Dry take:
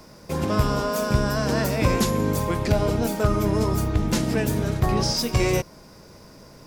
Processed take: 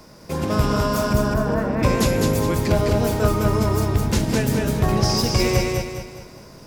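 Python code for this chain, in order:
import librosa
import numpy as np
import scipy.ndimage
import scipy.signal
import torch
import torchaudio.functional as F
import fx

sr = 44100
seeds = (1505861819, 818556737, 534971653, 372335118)

y = fx.lowpass(x, sr, hz=1400.0, slope=12, at=(1.13, 1.83))
y = fx.echo_feedback(y, sr, ms=207, feedback_pct=41, wet_db=-3.0)
y = F.gain(torch.from_numpy(y), 1.0).numpy()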